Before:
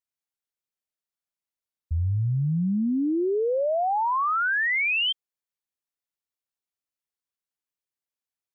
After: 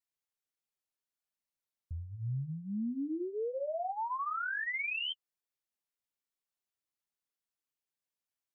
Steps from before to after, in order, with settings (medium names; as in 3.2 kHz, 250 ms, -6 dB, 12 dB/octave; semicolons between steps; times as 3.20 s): peak limiter -30 dBFS, peak gain reduction 9 dB; flange 1.4 Hz, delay 4.1 ms, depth 6.7 ms, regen -28%; trim +1 dB